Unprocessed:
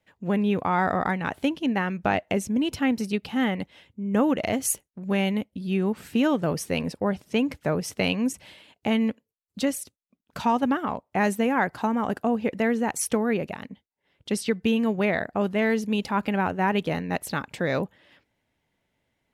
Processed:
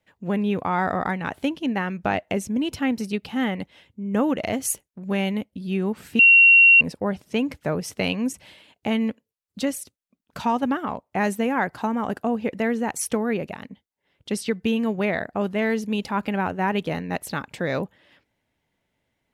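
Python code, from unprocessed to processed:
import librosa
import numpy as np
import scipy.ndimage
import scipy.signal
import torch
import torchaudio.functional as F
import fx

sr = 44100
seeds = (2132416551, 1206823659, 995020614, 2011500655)

y = fx.edit(x, sr, fx.bleep(start_s=6.19, length_s=0.62, hz=2740.0, db=-9.0), tone=tone)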